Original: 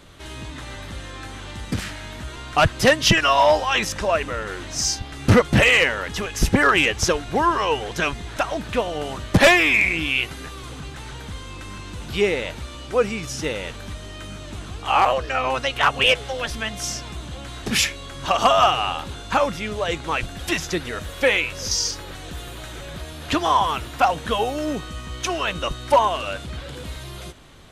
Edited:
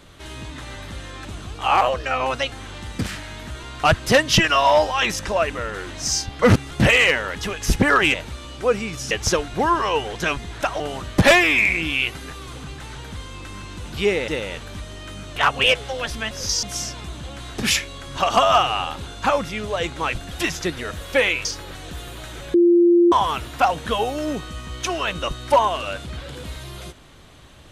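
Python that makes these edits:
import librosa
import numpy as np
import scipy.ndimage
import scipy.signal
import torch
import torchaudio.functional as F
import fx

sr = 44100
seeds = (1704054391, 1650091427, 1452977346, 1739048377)

y = fx.edit(x, sr, fx.reverse_span(start_s=5.13, length_s=0.31),
    fx.cut(start_s=8.56, length_s=0.4),
    fx.move(start_s=12.44, length_s=0.97, to_s=6.87),
    fx.move(start_s=14.49, length_s=1.27, to_s=1.25),
    fx.move(start_s=21.53, length_s=0.32, to_s=16.71),
    fx.bleep(start_s=22.94, length_s=0.58, hz=346.0, db=-10.5), tone=tone)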